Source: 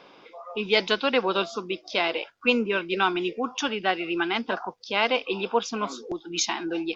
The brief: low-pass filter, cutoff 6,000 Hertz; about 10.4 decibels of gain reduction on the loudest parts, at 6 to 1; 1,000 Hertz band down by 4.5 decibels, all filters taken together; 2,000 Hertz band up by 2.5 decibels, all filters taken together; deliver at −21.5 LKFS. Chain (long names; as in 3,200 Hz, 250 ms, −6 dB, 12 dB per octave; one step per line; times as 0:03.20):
low-pass filter 6,000 Hz
parametric band 1,000 Hz −7.5 dB
parametric band 2,000 Hz +5.5 dB
downward compressor 6 to 1, threshold −26 dBFS
level +9.5 dB